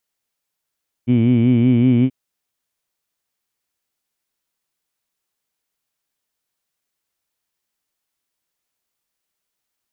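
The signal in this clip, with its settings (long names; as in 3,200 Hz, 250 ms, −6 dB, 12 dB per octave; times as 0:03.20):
vowel by formant synthesis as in heed, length 1.03 s, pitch 118 Hz, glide +1 semitone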